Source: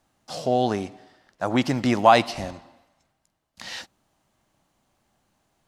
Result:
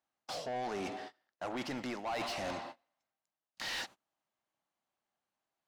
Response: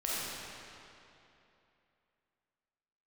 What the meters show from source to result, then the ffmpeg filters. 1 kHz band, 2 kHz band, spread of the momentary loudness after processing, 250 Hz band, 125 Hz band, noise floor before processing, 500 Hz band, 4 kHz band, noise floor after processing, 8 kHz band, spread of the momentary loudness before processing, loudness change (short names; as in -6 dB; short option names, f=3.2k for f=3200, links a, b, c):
-17.0 dB, -11.0 dB, 9 LU, -17.5 dB, -20.5 dB, -75 dBFS, -16.5 dB, -9.5 dB, under -85 dBFS, -8.0 dB, 20 LU, -17.0 dB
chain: -filter_complex "[0:a]agate=range=-27dB:threshold=-50dB:ratio=16:detection=peak,areverse,acompressor=threshold=-33dB:ratio=10,areverse,asplit=2[a][b];[b]highpass=f=720:p=1,volume=23dB,asoftclip=type=tanh:threshold=-24dB[c];[a][c]amix=inputs=2:normalize=0,lowpass=f=3.7k:p=1,volume=-6dB,volume=-6dB"